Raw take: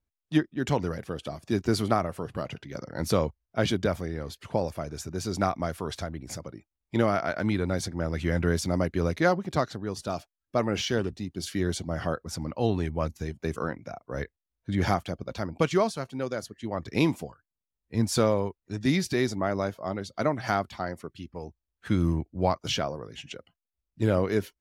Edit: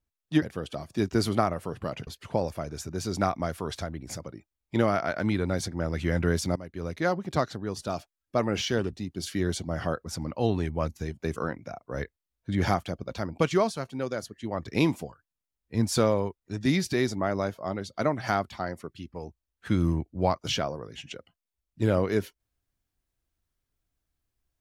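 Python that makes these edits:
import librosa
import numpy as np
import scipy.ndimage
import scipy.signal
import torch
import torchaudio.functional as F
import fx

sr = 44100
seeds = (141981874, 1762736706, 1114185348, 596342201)

y = fx.edit(x, sr, fx.cut(start_s=0.42, length_s=0.53),
    fx.cut(start_s=2.6, length_s=1.67),
    fx.fade_in_from(start_s=8.76, length_s=0.81, floor_db=-19.5), tone=tone)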